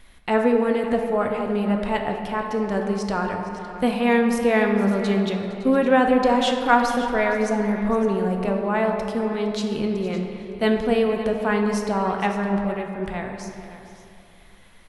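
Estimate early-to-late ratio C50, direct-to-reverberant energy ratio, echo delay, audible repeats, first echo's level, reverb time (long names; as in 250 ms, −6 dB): 4.0 dB, 2.5 dB, 462 ms, 2, −16.5 dB, 2.6 s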